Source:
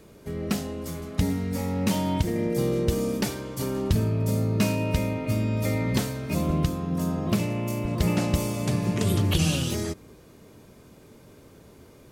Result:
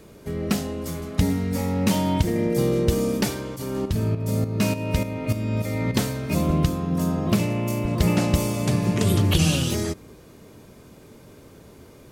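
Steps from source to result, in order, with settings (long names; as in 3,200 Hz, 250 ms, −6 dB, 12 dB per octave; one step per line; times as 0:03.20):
0:03.56–0:05.97: shaped tremolo saw up 3.4 Hz, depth 65%
level +3.5 dB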